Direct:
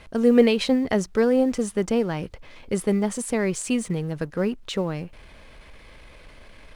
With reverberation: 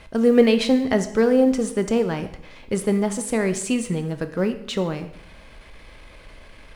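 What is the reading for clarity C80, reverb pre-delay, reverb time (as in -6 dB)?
14.5 dB, 6 ms, 0.75 s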